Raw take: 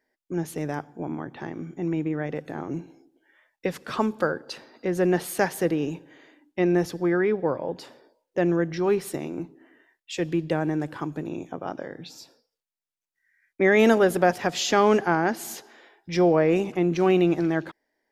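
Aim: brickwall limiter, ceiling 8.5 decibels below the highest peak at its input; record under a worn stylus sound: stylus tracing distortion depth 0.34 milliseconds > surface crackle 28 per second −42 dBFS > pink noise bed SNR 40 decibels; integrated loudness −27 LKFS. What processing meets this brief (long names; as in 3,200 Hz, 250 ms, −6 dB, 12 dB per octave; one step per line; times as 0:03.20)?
brickwall limiter −14.5 dBFS
stylus tracing distortion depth 0.34 ms
surface crackle 28 per second −42 dBFS
pink noise bed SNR 40 dB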